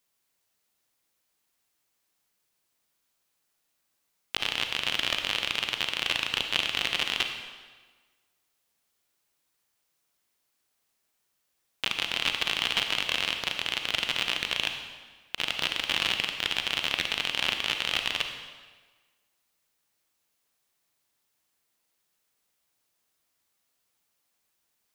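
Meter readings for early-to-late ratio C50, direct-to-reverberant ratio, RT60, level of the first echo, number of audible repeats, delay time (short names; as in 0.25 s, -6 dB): 6.0 dB, 5.0 dB, 1.4 s, none, none, none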